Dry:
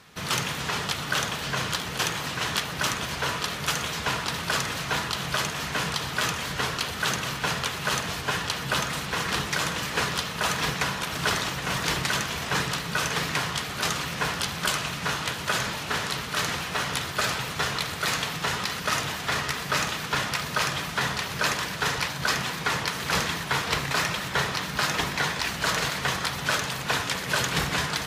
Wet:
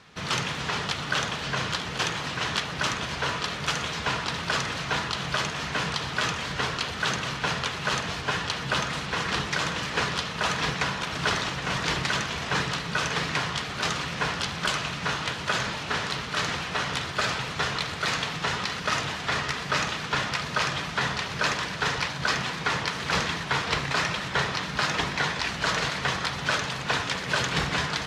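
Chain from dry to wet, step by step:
low-pass filter 6,000 Hz 12 dB per octave

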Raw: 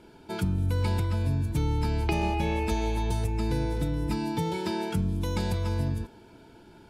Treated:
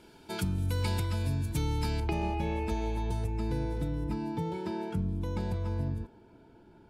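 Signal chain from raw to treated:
high-shelf EQ 2,100 Hz +7.5 dB, from 0:02.00 −6 dB, from 0:04.04 −11.5 dB
level −4 dB

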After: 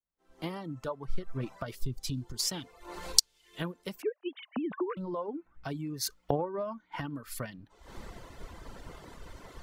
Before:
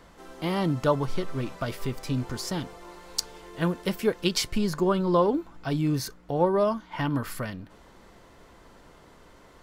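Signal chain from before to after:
0:04.02–0:04.97: three sine waves on the formant tracks
camcorder AGC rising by 42 dB per second
0:01.75–0:02.40: flat-topped bell 1,100 Hz −9.5 dB 2.6 octaves
reverb reduction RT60 1.1 s
multiband upward and downward expander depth 100%
level −17 dB

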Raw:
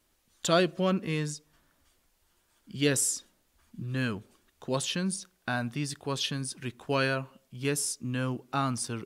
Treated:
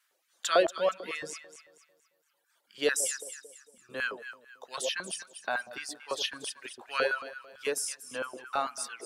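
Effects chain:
delay that swaps between a low-pass and a high-pass 117 ms, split 870 Hz, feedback 64%, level −4 dB
reverb reduction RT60 1.5 s
auto-filter high-pass square 4.5 Hz 530–1,500 Hz
level −2 dB

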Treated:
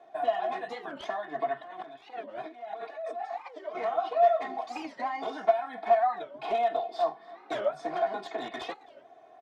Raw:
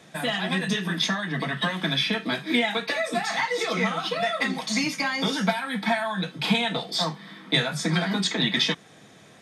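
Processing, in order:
wavefolder on the positive side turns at −20.5 dBFS
0:01.62–0:03.75: compressor whose output falls as the input rises −37 dBFS, ratio −1
resonant band-pass 710 Hz, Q 3.9
comb filter 2.8 ms, depth 80%
single-tap delay 288 ms −23 dB
wow of a warped record 45 rpm, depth 250 cents
level +3.5 dB

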